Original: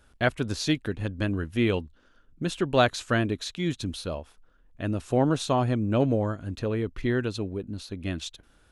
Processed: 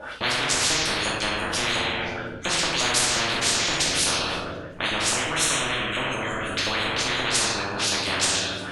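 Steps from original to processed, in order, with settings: LFO band-pass saw up 5.7 Hz 520–7900 Hz; 5.13–6.50 s: static phaser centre 2 kHz, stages 4; simulated room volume 250 m³, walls mixed, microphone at 2.5 m; spectrum-flattening compressor 10:1; trim +2.5 dB

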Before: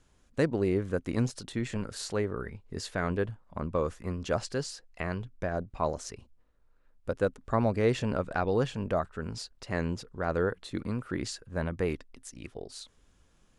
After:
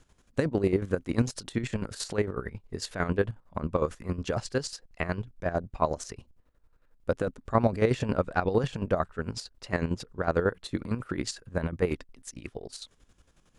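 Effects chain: square tremolo 11 Hz, depth 65%, duty 40%; trim +5 dB

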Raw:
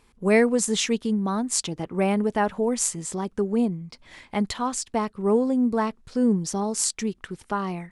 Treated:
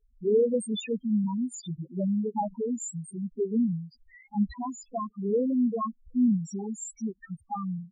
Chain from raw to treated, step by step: drifting ripple filter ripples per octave 2, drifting +2.5 Hz, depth 10 dB; loudest bins only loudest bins 2; trim -2 dB

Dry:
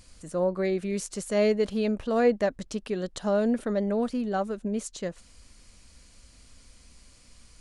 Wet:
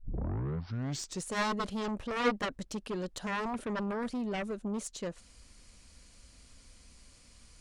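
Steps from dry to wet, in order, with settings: tape start-up on the opening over 1.28 s; Chebyshev shaper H 3 -10 dB, 6 -25 dB, 7 -15 dB, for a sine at -11 dBFS; trim -4 dB

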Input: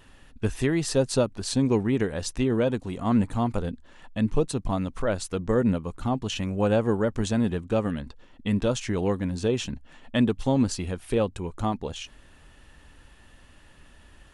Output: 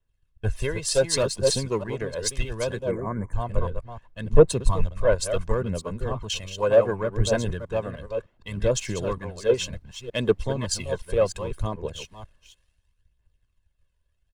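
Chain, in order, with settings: chunks repeated in reverse 306 ms, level -6 dB; harmonic-percussive split harmonic -8 dB; comb 1.9 ms, depth 61%; waveshaping leveller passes 1; phaser 0.68 Hz, delay 2.1 ms, feedback 40%; added noise brown -55 dBFS; 2.91–3.33 s: brick-wall FIR band-stop 2.4–6 kHz; three bands expanded up and down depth 70%; trim -4 dB

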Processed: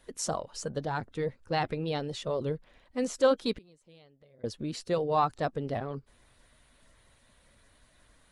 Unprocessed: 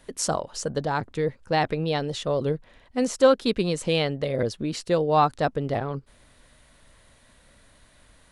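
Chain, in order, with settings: coarse spectral quantiser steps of 15 dB; 3.53–4.44 s: inverted gate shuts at -24 dBFS, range -27 dB; trim -6 dB

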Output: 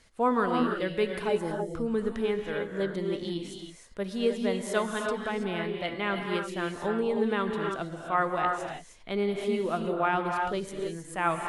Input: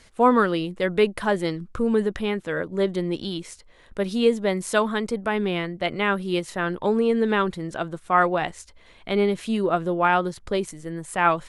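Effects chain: time-frequency box 1.28–1.72 s, 950–5000 Hz -17 dB; gated-style reverb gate 350 ms rising, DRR 2.5 dB; trim -8 dB

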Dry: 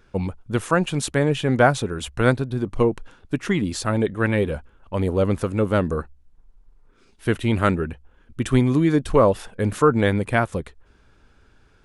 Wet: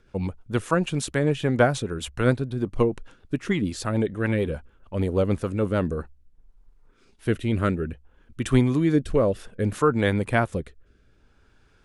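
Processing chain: rotary cabinet horn 6.7 Hz, later 0.6 Hz, at 5.51 s; trim -1 dB

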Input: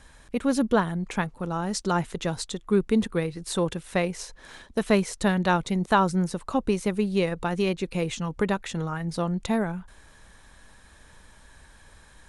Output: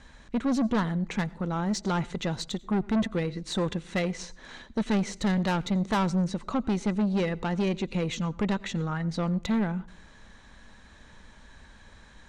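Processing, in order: low-pass 6.8 kHz 24 dB/octave; band-stop 5.1 kHz, Q 14; small resonant body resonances 220/2000/3900 Hz, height 7 dB; saturation -21.5 dBFS, distortion -8 dB; on a send: reverberation RT60 0.40 s, pre-delay 87 ms, DRR 22 dB

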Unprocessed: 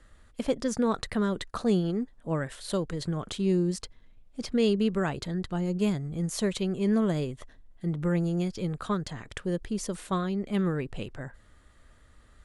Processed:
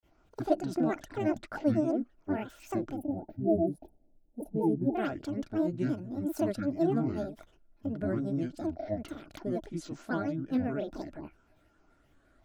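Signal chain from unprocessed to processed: granulator 135 ms, grains 23 per s, spray 22 ms, pitch spread up and down by 12 st; small resonant body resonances 310/620/1400 Hz, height 14 dB, ringing for 25 ms; time-frequency box 2.97–4.95 s, 920–9300 Hz -28 dB; trim -8.5 dB

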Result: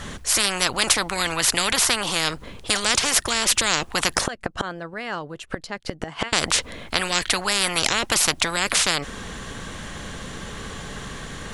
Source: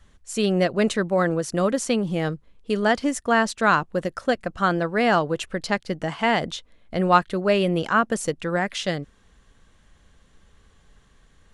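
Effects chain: 4.21–6.33 s: inverted gate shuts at -22 dBFS, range -33 dB; spectrum-flattening compressor 10:1; trim +2 dB

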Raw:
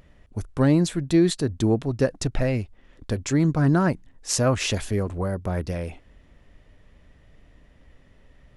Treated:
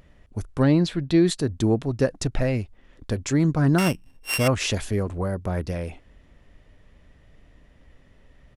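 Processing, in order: 3.78–4.48 s: sorted samples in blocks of 16 samples; resampled via 32 kHz; 0.63–1.26 s: resonant high shelf 5.7 kHz -9 dB, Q 1.5

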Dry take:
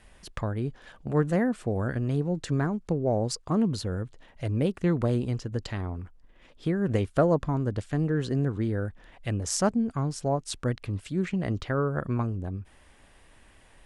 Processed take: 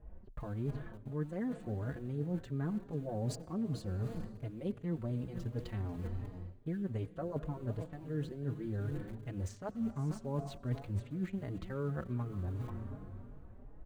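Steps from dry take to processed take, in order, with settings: tilt EQ -1.5 dB/octave; delay 489 ms -17.5 dB; level-controlled noise filter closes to 560 Hz, open at -21 dBFS; in parallel at -8 dB: small samples zeroed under -33 dBFS; on the sum: peaking EQ 5.3 kHz -7.5 dB 0.22 oct; plate-style reverb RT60 3 s, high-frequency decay 0.9×, pre-delay 75 ms, DRR 16 dB; reverse; compression 16:1, threshold -33 dBFS, peak gain reduction 22 dB; reverse; endless flanger 4.4 ms +2.7 Hz; trim +1.5 dB

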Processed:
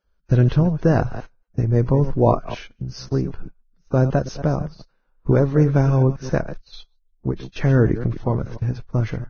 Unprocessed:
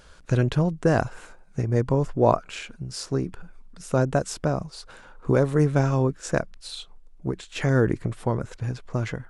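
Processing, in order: chunks repeated in reverse 134 ms, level -12.5 dB; gate -36 dBFS, range -26 dB; tilt EQ -2 dB/octave; Vorbis 16 kbps 16 kHz

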